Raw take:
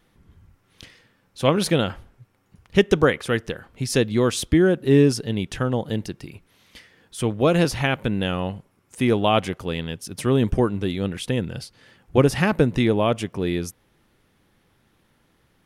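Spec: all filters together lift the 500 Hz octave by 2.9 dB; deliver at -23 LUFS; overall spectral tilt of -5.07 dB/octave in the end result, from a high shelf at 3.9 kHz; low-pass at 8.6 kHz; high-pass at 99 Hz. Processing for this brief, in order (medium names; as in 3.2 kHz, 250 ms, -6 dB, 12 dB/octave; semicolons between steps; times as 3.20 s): high-pass 99 Hz; low-pass 8.6 kHz; peaking EQ 500 Hz +3.5 dB; treble shelf 3.9 kHz +4.5 dB; trim -2.5 dB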